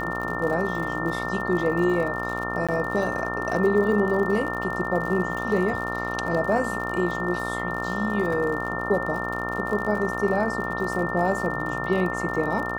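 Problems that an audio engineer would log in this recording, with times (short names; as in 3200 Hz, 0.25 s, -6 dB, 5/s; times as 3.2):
buzz 60 Hz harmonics 23 -31 dBFS
crackle 67/s -31 dBFS
tone 1800 Hz -30 dBFS
2.67–2.69 gap 16 ms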